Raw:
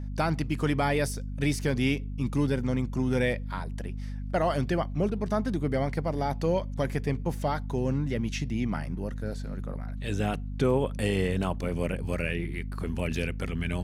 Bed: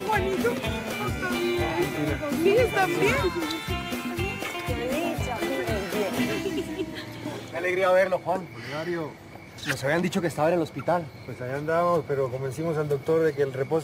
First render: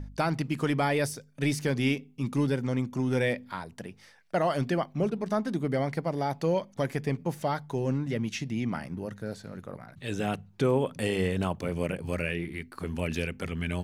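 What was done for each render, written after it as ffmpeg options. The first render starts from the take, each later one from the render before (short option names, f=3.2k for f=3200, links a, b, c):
-af "bandreject=f=50:t=h:w=4,bandreject=f=100:t=h:w=4,bandreject=f=150:t=h:w=4,bandreject=f=200:t=h:w=4,bandreject=f=250:t=h:w=4"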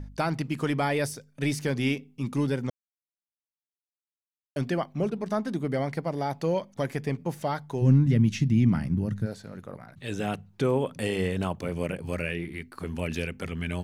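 -filter_complex "[0:a]asplit=3[a][b][c];[a]afade=t=out:st=7.81:d=0.02[d];[b]asubboost=boost=5.5:cutoff=230,afade=t=in:st=7.81:d=0.02,afade=t=out:st=9.25:d=0.02[e];[c]afade=t=in:st=9.25:d=0.02[f];[d][e][f]amix=inputs=3:normalize=0,asplit=3[g][h][i];[g]atrim=end=2.7,asetpts=PTS-STARTPTS,afade=t=out:st=2.696:d=0.004:c=hsin[j];[h]atrim=start=2.7:end=4.56,asetpts=PTS-STARTPTS,volume=0[k];[i]atrim=start=4.56,asetpts=PTS-STARTPTS,afade=t=in:d=0.004:c=hsin[l];[j][k][l]concat=n=3:v=0:a=1"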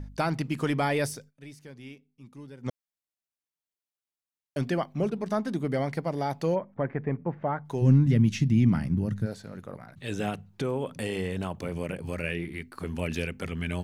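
-filter_complex "[0:a]asplit=3[a][b][c];[a]afade=t=out:st=6.54:d=0.02[d];[b]lowpass=f=1.9k:w=0.5412,lowpass=f=1.9k:w=1.3066,afade=t=in:st=6.54:d=0.02,afade=t=out:st=7.64:d=0.02[e];[c]afade=t=in:st=7.64:d=0.02[f];[d][e][f]amix=inputs=3:normalize=0,asettb=1/sr,asplit=3[g][h][i];[g]atrim=end=10.294[j];[h]atrim=start=10.29:end=12.24,asetpts=PTS-STARTPTS,afade=t=in:d=0.004:c=qsin,afade=t=out:st=1.946:d=0.004:c=qsin,acompressor=threshold=-28dB:ratio=2:attack=3.2:release=140:knee=1:detection=peak[k];[i]atrim=start=12.236[l];[j][k]acrossfade=d=0.004:c1=hsin:c2=qsin[m];[m][l]acrossfade=d=0.004:c1=qsin:c2=hsin,asplit=3[n][o][p];[n]atrim=end=1.51,asetpts=PTS-STARTPTS,afade=t=out:st=1.28:d=0.23:c=exp:silence=0.11885[q];[o]atrim=start=1.51:end=2.44,asetpts=PTS-STARTPTS,volume=-18.5dB[r];[p]atrim=start=2.44,asetpts=PTS-STARTPTS,afade=t=in:d=0.23:c=exp:silence=0.11885[s];[q][r][s]concat=n=3:v=0:a=1"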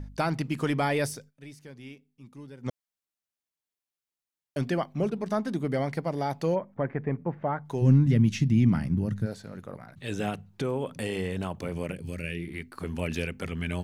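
-filter_complex "[0:a]asettb=1/sr,asplit=3[a][b][c];[a]atrim=end=11.924[d];[b]atrim=start=11.92:end=12.48,asetpts=PTS-STARTPTS,afade=t=in:d=0.004:c=qsin,afade=t=out:st=0.556:d=0.004:c=qsin,equalizer=f=910:w=0.89:g=-13.5[e];[c]atrim=start=12.476[f];[d][e]acrossfade=d=0.004:c1=hsin:c2=qsin[g];[g][f]acrossfade=d=0.004:c1=qsin:c2=hsin"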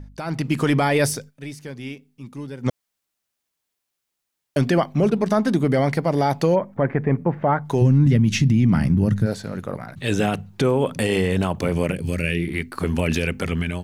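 -af "alimiter=limit=-21dB:level=0:latency=1:release=49,dynaudnorm=f=170:g=5:m=11.5dB"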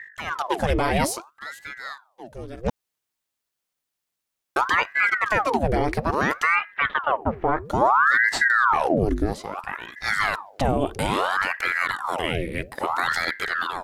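-af "aeval=exprs='val(0)*sin(2*PI*1000*n/s+1000*0.85/0.6*sin(2*PI*0.6*n/s))':c=same"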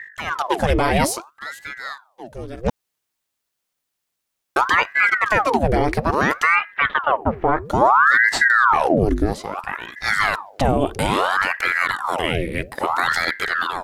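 -af "volume=4dB"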